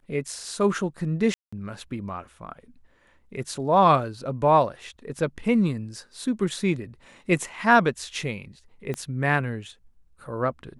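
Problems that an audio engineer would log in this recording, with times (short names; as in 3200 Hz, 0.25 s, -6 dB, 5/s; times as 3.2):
1.34–1.52 gap 0.185 s
8.94 pop -18 dBFS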